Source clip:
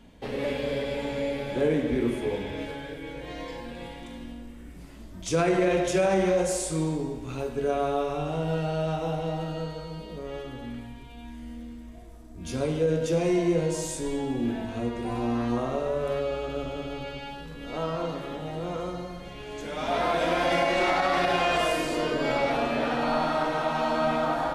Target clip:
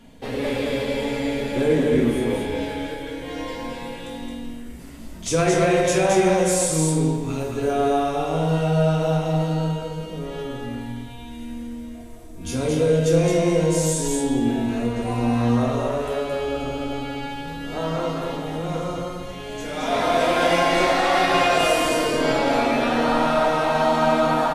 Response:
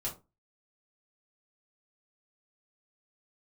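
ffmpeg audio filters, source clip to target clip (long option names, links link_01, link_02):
-filter_complex "[0:a]bandreject=frequency=50:width_type=h:width=6,bandreject=frequency=100:width_type=h:width=6,bandreject=frequency=150:width_type=h:width=6,aecho=1:1:220:0.668,asplit=2[link_01][link_02];[1:a]atrim=start_sample=2205,asetrate=32193,aresample=44100,highshelf=frequency=4800:gain=11[link_03];[link_02][link_03]afir=irnorm=-1:irlink=0,volume=-5dB[link_04];[link_01][link_04]amix=inputs=2:normalize=0"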